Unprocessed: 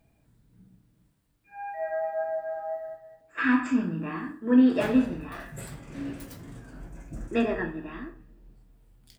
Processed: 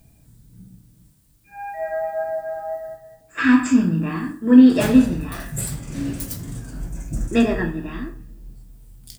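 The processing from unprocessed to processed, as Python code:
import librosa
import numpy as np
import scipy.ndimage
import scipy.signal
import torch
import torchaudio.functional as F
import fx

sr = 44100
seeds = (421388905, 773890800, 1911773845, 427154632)

y = fx.bass_treble(x, sr, bass_db=9, treble_db=14)
y = y * 10.0 ** (4.5 / 20.0)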